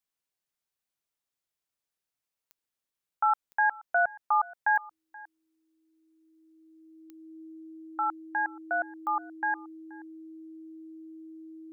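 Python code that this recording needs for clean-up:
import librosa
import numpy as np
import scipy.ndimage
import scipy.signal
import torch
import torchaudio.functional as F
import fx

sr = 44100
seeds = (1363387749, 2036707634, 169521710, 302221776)

y = fx.fix_declick_ar(x, sr, threshold=10.0)
y = fx.notch(y, sr, hz=320.0, q=30.0)
y = fx.fix_echo_inverse(y, sr, delay_ms=478, level_db=-22.0)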